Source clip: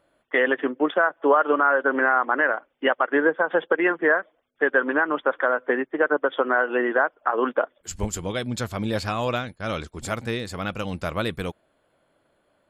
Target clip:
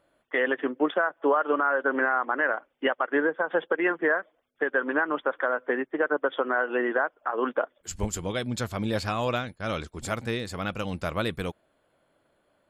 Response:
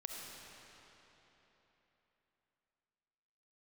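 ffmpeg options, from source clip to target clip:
-af "alimiter=limit=-11.5dB:level=0:latency=1:release=293,volume=-2dB"

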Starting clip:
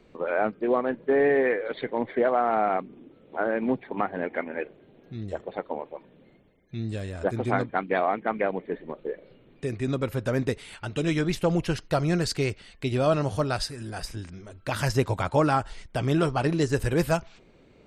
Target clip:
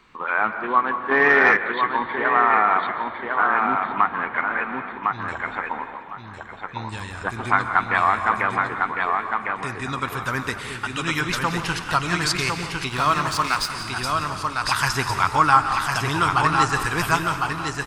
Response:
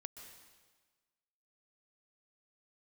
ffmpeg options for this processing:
-filter_complex "[0:a]aecho=1:1:1055|2110|3165:0.631|0.133|0.0278,asplit=2[a][b];[1:a]atrim=start_sample=2205[c];[b][c]afir=irnorm=-1:irlink=0,volume=10.5dB[d];[a][d]amix=inputs=2:normalize=0,asettb=1/sr,asplit=3[e][f][g];[e]atrim=end=12.894[h];[f]atrim=start=12.89:end=13.7,asetpts=PTS-STARTPTS,afade=t=in:d=0.004:c=qsin,afade=t=out:st=0.806:d=0.004:c=qsin,aeval=exprs='sgn(val(0))*max(abs(val(0))-0.0355,0)':c=same[i];[g]atrim=start=13.696[j];[h][i]acrossfade=d=0.004:c1=hsin:c2=qsin[k];[k][j]acrossfade=d=0.004:c1=qsin:c2=hsin,lowshelf=f=780:t=q:w=3:g=-10,asplit=2[l][m];[m]asplit=6[n][o][p][q][r][s];[n]adelay=174,afreqshift=-41,volume=-15dB[t];[o]adelay=348,afreqshift=-82,volume=-19.6dB[u];[p]adelay=522,afreqshift=-123,volume=-24.2dB[v];[q]adelay=696,afreqshift=-164,volume=-28.7dB[w];[r]adelay=870,afreqshift=-205,volume=-33.3dB[x];[s]adelay=1044,afreqshift=-246,volume=-37.9dB[y];[t][u][v][w][x][y]amix=inputs=6:normalize=0[z];[l][z]amix=inputs=2:normalize=0,asettb=1/sr,asplit=3[aa][ab][ac];[aa]atrim=end=1.114[ad];[ab]atrim=start=1.11:end=1.57,asetpts=PTS-STARTPTS,afade=t=in:d=0.004:c=qsin,afade=t=out:st=0.456:d=0.004:c=qsin,acontrast=37[ae];[ac]atrim=start=1.566[af];[ad][ae]acrossfade=d=0.004:c1=hsin:c2=qsin[ag];[ag][af]acrossfade=d=0.004:c1=qsin:c2=hsin,volume=-1.5dB"

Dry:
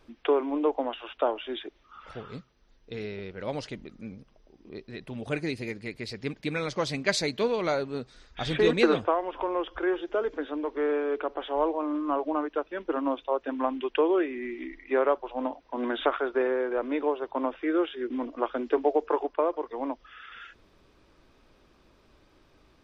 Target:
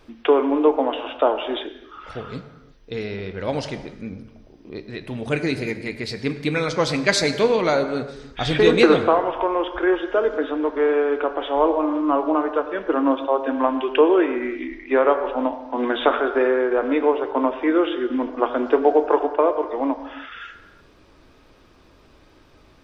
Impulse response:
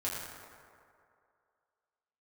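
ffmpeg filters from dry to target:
-filter_complex "[0:a]asplit=2[a][b];[1:a]atrim=start_sample=2205,afade=t=out:st=0.41:d=0.01,atrim=end_sample=18522[c];[b][c]afir=irnorm=-1:irlink=0,volume=-9dB[d];[a][d]amix=inputs=2:normalize=0,volume=5.5dB"

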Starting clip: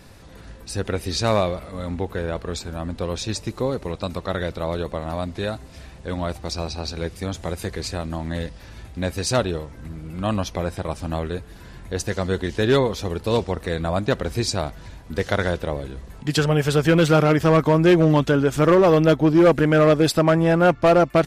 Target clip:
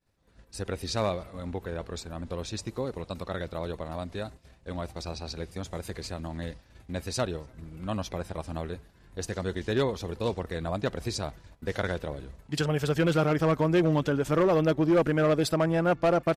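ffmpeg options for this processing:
-filter_complex "[0:a]asplit=2[a][b];[b]adelay=384.8,volume=-28dB,highshelf=f=4k:g=-8.66[c];[a][c]amix=inputs=2:normalize=0,agate=range=-33dB:threshold=-33dB:ratio=3:detection=peak,atempo=1.3,volume=-8dB"

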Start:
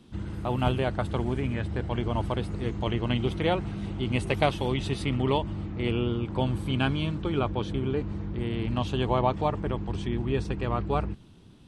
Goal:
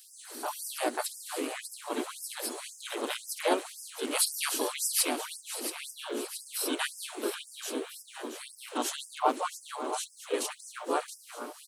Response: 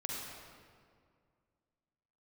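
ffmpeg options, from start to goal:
-filter_complex "[0:a]aexciter=amount=14.5:drive=3.8:freq=5.8k,asplit=4[a][b][c][d];[b]asetrate=22050,aresample=44100,atempo=2,volume=-3dB[e];[c]asetrate=52444,aresample=44100,atempo=0.840896,volume=-2dB[f];[d]asetrate=55563,aresample=44100,atempo=0.793701,volume=-9dB[g];[a][e][f][g]amix=inputs=4:normalize=0,asplit=2[h][i];[i]aecho=0:1:675|1350|2025|2700|3375|4050|4725:0.316|0.18|0.103|0.0586|0.0334|0.019|0.0108[j];[h][j]amix=inputs=2:normalize=0,afftfilt=real='re*gte(b*sr/1024,220*pow(4900/220,0.5+0.5*sin(2*PI*1.9*pts/sr)))':imag='im*gte(b*sr/1024,220*pow(4900/220,0.5+0.5*sin(2*PI*1.9*pts/sr)))':win_size=1024:overlap=0.75,volume=-3.5dB"

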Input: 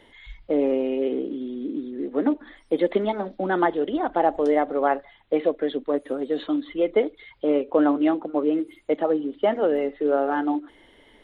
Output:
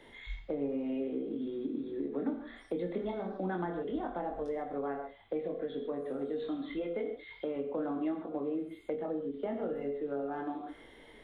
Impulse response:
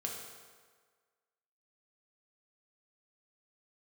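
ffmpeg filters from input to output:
-filter_complex "[0:a]asettb=1/sr,asplit=3[a][b][c];[a]atrim=end=6.834[d];[b]atrim=start=6.83:end=7.56,asetpts=PTS-STARTPTS,afade=t=in:d=0.004:c=qsin,afade=t=out:st=0.726:d=0.004:c=qsin,tiltshelf=f=970:g=-3[e];[c]atrim=start=7.556[f];[d][e]acrossfade=d=0.004:c1=hsin:c2=qsin[g];[g][f]acrossfade=d=0.004:c1=qsin:c2=hsin,bandreject=f=3k:w=12,asplit=2[h][i];[1:a]atrim=start_sample=2205,atrim=end_sample=6174,adelay=22[j];[i][j]afir=irnorm=-1:irlink=0,volume=-1.5dB[k];[h][k]amix=inputs=2:normalize=0,acrossover=split=190[l][m];[m]acompressor=threshold=-32dB:ratio=10[n];[l][n]amix=inputs=2:normalize=0,volume=-3dB"

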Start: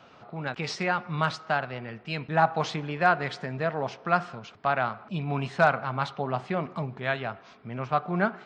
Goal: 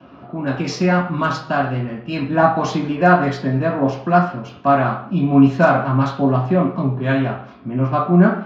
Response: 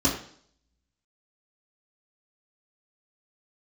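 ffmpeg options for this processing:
-filter_complex "[0:a]acrossover=split=170|1000|4100[a][b][c][d];[d]aeval=exprs='sgn(val(0))*max(abs(val(0))-0.00119,0)':c=same[e];[a][b][c][e]amix=inputs=4:normalize=0[f];[1:a]atrim=start_sample=2205,afade=t=out:st=0.3:d=0.01,atrim=end_sample=13671[g];[f][g]afir=irnorm=-1:irlink=0,volume=-6dB"

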